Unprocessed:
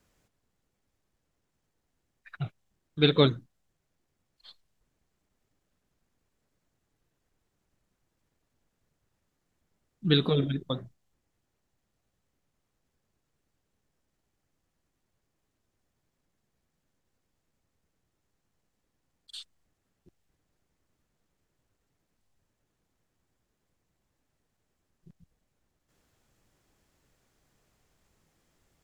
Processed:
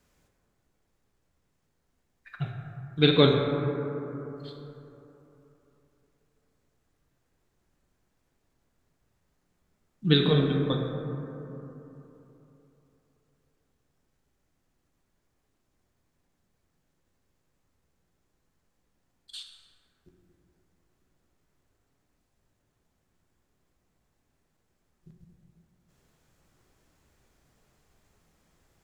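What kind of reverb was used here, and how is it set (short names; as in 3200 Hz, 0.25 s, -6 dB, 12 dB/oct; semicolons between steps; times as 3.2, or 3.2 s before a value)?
plate-style reverb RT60 3.3 s, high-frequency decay 0.3×, DRR 1 dB; gain +1 dB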